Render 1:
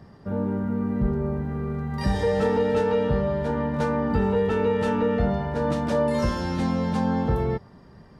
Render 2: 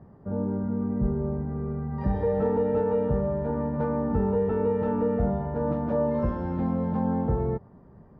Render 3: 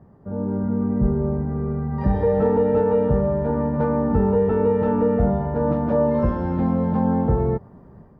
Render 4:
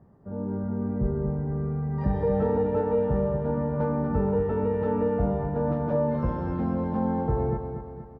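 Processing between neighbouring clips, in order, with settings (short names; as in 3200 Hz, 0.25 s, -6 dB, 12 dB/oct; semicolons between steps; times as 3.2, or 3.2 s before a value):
LPF 1000 Hz 12 dB/oct; gain -2 dB
AGC gain up to 6 dB
feedback echo 0.237 s, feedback 48%, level -8 dB; gain -6 dB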